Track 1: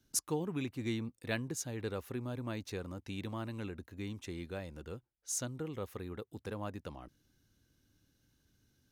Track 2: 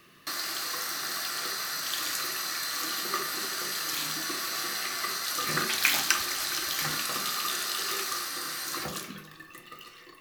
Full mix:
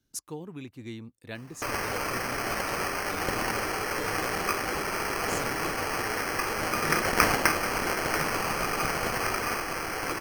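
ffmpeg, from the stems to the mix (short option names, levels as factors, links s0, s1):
-filter_complex "[0:a]volume=0.668[s0];[1:a]acrusher=samples=12:mix=1:aa=0.000001,adelay=1350,volume=1.33[s1];[s0][s1]amix=inputs=2:normalize=0"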